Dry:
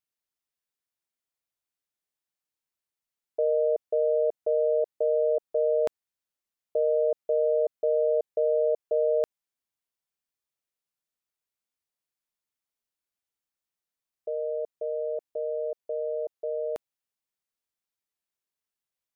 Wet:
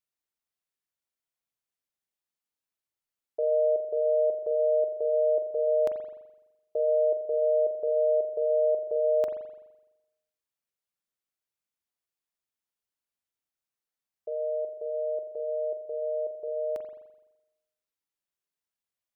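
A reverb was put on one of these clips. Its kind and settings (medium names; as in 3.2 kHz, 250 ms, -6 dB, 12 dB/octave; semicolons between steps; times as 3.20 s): spring tank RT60 1 s, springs 42 ms, chirp 65 ms, DRR 5.5 dB; trim -3 dB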